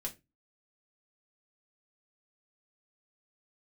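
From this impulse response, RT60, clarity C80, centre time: no single decay rate, 25.5 dB, 9 ms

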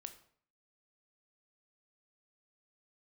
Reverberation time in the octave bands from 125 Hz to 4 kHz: 0.60 s, 0.60 s, 0.55 s, 0.55 s, 0.50 s, 0.45 s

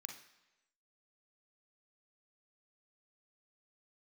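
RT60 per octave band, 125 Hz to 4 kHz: 0.90 s, 0.90 s, 1.0 s, 1.0 s, 1.0 s, 0.95 s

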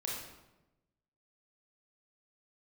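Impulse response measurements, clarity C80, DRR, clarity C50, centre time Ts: 4.0 dB, -3.5 dB, 0.5 dB, 61 ms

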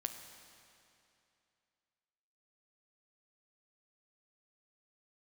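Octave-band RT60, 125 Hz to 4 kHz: 2.7 s, 2.7 s, 2.7 s, 2.7 s, 2.6 s, 2.5 s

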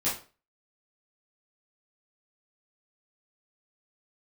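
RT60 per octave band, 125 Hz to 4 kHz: 0.35 s, 0.35 s, 0.40 s, 0.35 s, 0.30 s, 0.30 s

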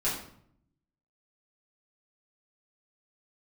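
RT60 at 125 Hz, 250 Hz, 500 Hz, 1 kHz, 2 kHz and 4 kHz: 1.1 s, 0.95 s, 0.70 s, 0.60 s, 0.50 s, 0.45 s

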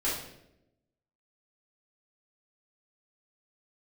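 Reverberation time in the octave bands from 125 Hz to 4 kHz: 1.1 s, 1.1 s, 1.0 s, 0.70 s, 0.70 s, 0.60 s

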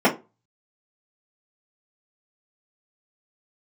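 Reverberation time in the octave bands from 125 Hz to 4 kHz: 0.40 s, 0.30 s, 0.30 s, 0.25 s, 0.20 s, 0.20 s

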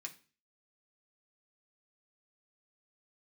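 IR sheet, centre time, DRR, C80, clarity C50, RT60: 8 ms, 0.0 dB, 20.0 dB, 15.5 dB, 0.35 s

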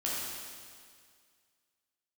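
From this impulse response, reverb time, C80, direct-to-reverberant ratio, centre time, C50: 2.0 s, -0.5 dB, -7.0 dB, 128 ms, -2.5 dB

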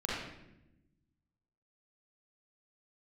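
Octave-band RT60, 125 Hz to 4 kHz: 1.8 s, 1.5 s, 1.0 s, 0.75 s, 0.80 s, 0.65 s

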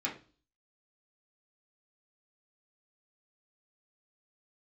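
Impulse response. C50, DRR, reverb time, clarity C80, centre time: 10.0 dB, -5.0 dB, 0.35 s, 16.0 dB, 20 ms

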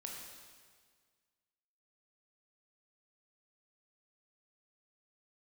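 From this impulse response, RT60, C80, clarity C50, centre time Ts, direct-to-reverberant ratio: 1.7 s, 3.0 dB, 1.5 dB, 76 ms, -1.0 dB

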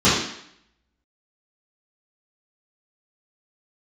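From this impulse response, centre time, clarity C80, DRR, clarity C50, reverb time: 56 ms, 5.5 dB, -14.0 dB, 1.0 dB, 0.70 s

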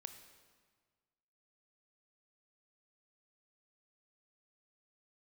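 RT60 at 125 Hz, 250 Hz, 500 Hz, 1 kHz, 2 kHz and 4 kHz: 1.9 s, 1.7 s, 1.6 s, 1.6 s, 1.4 s, 1.3 s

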